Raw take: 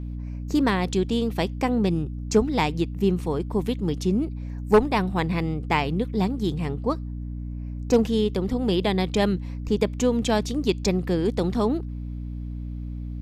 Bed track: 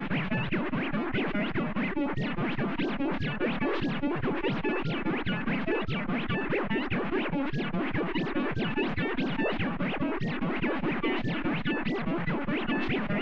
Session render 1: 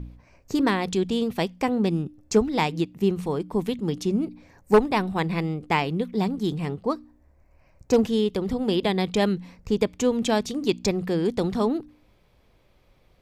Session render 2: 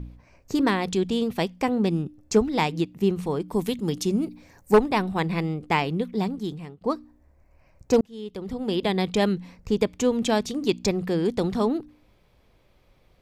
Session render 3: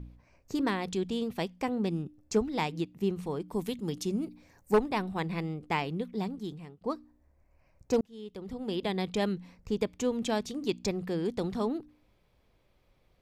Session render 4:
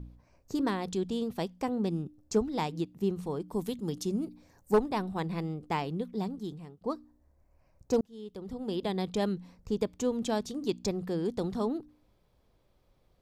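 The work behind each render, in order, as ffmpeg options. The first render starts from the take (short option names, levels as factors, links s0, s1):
-af "bandreject=f=60:t=h:w=4,bandreject=f=120:t=h:w=4,bandreject=f=180:t=h:w=4,bandreject=f=240:t=h:w=4,bandreject=f=300:t=h:w=4"
-filter_complex "[0:a]asettb=1/sr,asplit=3[s0][s1][s2];[s0]atrim=end=3.484[s3];[s1]atrim=start=3.48:end=4.72,asetpts=PTS-STARTPTS,afade=t=in:d=0.004:c=qsin,afade=t=out:st=1.236:d=0.004:c=qsin,highshelf=f=5200:g=10[s4];[s2]atrim=start=4.716[s5];[s3][s4]acrossfade=d=0.004:c1=hsin:c2=qsin[s6];[s6][s5]acrossfade=d=0.004:c1=qsin:c2=hsin,asplit=3[s7][s8][s9];[s7]atrim=end=6.81,asetpts=PTS-STARTPTS,afade=t=out:st=5.87:d=0.94:c=qsin:silence=0.0749894[s10];[s8]atrim=start=6.81:end=8.01,asetpts=PTS-STARTPTS,afade=t=in:d=0.004:c=hsin:silence=0.0749894,afade=t=out:st=1.196:d=0.004:c=hsin[s11];[s9]atrim=start=8.01,asetpts=PTS-STARTPTS,afade=t=in:d=0.95[s12];[s10][s11][s12]concat=n=3:v=0:a=1"
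-af "volume=0.422"
-af "equalizer=f=2300:t=o:w=0.93:g=-7"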